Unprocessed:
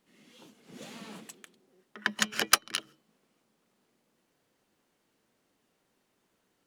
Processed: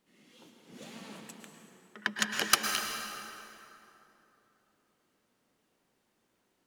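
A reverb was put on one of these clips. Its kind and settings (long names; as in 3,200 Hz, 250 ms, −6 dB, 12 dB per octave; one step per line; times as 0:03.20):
dense smooth reverb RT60 3 s, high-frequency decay 0.65×, pre-delay 95 ms, DRR 3 dB
level −2.5 dB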